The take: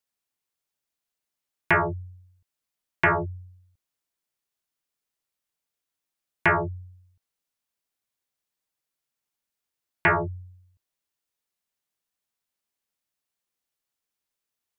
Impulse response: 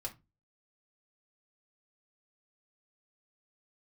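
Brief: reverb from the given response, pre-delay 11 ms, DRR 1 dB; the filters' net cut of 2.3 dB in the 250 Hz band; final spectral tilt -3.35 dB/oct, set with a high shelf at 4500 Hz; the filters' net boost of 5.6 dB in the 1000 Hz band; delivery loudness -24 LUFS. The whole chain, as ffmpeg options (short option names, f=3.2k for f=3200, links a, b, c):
-filter_complex "[0:a]equalizer=f=250:t=o:g=-5.5,equalizer=f=1k:t=o:g=7,highshelf=f=4.5k:g=3.5,asplit=2[a][b];[1:a]atrim=start_sample=2205,adelay=11[c];[b][c]afir=irnorm=-1:irlink=0,volume=0dB[d];[a][d]amix=inputs=2:normalize=0,volume=-4.5dB"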